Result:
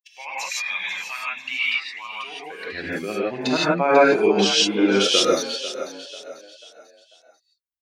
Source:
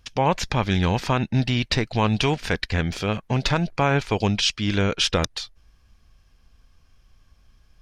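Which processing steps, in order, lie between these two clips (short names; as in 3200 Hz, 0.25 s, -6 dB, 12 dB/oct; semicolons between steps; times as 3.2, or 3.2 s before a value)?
per-bin expansion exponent 2; 1.65–2.66 level quantiser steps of 20 dB; high-pass sweep 2200 Hz -> 360 Hz, 1.7–2.6; on a send: frequency-shifting echo 0.493 s, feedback 40%, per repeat +37 Hz, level -12.5 dB; on the sum: non-linear reverb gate 0.19 s rising, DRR -7.5 dB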